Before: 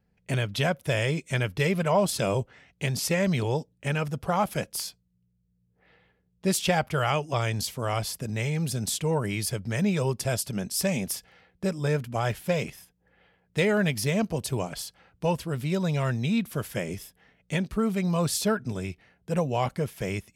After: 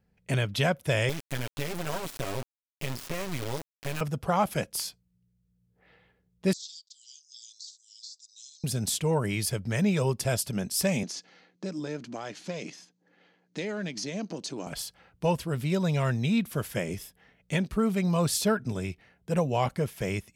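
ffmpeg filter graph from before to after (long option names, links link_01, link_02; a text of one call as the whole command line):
ffmpeg -i in.wav -filter_complex "[0:a]asettb=1/sr,asplit=3[link_01][link_02][link_03];[link_01]atrim=end=1.094[link_04];[link_02]atrim=start=1.09:end=4.01,asetpts=PTS-STARTPTS,afade=type=in:duration=0.004:curve=qsin,afade=type=out:start_time=2.916:duration=0.004:curve=qsin,aecho=1:1:7.3:0.75,atrim=end_sample=128772,acrossover=split=1800|3600[link_05][link_06][link_07];[link_05]acompressor=threshold=-29dB:ratio=4[link_08];[link_06]acompressor=threshold=-45dB:ratio=4[link_09];[link_07]acompressor=threshold=-45dB:ratio=4[link_10];[link_08][link_09][link_10]amix=inputs=3:normalize=0,acrusher=bits=3:dc=4:mix=0:aa=0.000001[link_11];[link_03]atrim=start=4.006[link_12];[link_04][link_11]acrossfade=duration=0.004:curve1=hsin:curve2=qsin[link_13];[link_13][link_12]acrossfade=duration=0.004:curve1=qsin:curve2=hsin,asettb=1/sr,asplit=3[link_14][link_15][link_16];[link_14]atrim=end=6.534[link_17];[link_15]atrim=start=6.53:end=8.64,asetpts=PTS-STARTPTS,afade=type=in:duration=0.004:curve=qsin,afade=type=out:start_time=2.106:duration=0.004:curve=qsin,deesser=0.75,asuperpass=centerf=5400:order=12:qfactor=1.4[link_18];[link_16]atrim=start=8.636[link_19];[link_17][link_18]acrossfade=duration=0.004:curve1=hsin:curve2=qsin[link_20];[link_20][link_19]acrossfade=duration=0.004:curve1=qsin:curve2=hsin,asettb=1/sr,asplit=3[link_21][link_22][link_23];[link_21]atrim=end=11.034[link_24];[link_22]atrim=start=11.03:end=14.67,asetpts=PTS-STARTPTS,afade=type=in:duration=0.004:curve=qsin,afade=type=out:start_time=3.636:duration=0.004:curve=qsin,aeval=exprs='if(lt(val(0),0),0.708*val(0),val(0))':channel_layout=same,acompressor=threshold=-35dB:ratio=2.5:attack=3.2:release=140:knee=1:detection=peak,highpass=frequency=170:width=0.5412,highpass=frequency=170:width=1.3066,equalizer=frequency=180:width_type=q:width=4:gain=3,equalizer=frequency=300:width_type=q:width=4:gain=10,equalizer=frequency=4300:width_type=q:width=4:gain=8,equalizer=frequency=6300:width_type=q:width=4:gain=9,lowpass=frequency=7500:width=0.5412,lowpass=frequency=7500:width=1.3066[link_25];[link_23]atrim=start=14.666[link_26];[link_24][link_25]acrossfade=duration=0.004:curve1=hsin:curve2=qsin[link_27];[link_27][link_26]acrossfade=duration=0.004:curve1=qsin:curve2=hsin" out.wav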